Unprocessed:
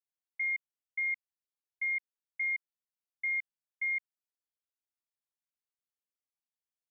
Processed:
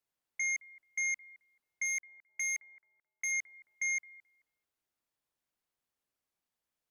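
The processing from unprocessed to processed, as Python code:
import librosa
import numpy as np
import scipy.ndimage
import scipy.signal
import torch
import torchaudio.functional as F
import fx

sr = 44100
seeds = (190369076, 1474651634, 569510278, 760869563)

p1 = fx.law_mismatch(x, sr, coded='mu', at=(1.84, 3.31), fade=0.02)
p2 = fx.high_shelf(p1, sr, hz=2200.0, db=-6.5)
p3 = fx.fold_sine(p2, sr, drive_db=6, ceiling_db=-29.5)
y = p3 + fx.echo_bbd(p3, sr, ms=217, stages=2048, feedback_pct=43, wet_db=-10.5, dry=0)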